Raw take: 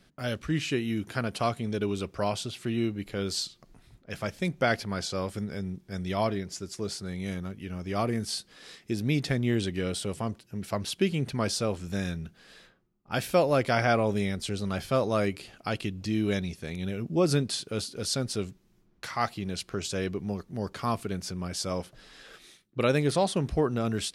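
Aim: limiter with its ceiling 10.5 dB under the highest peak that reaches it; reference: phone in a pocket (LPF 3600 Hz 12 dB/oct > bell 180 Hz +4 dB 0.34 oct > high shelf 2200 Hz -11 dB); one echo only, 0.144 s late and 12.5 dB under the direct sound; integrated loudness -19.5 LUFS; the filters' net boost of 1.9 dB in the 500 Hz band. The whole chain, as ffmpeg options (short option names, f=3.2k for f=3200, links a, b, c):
-af "equalizer=f=500:t=o:g=3,alimiter=limit=-20.5dB:level=0:latency=1,lowpass=3.6k,equalizer=f=180:t=o:w=0.34:g=4,highshelf=f=2.2k:g=-11,aecho=1:1:144:0.237,volume=13dB"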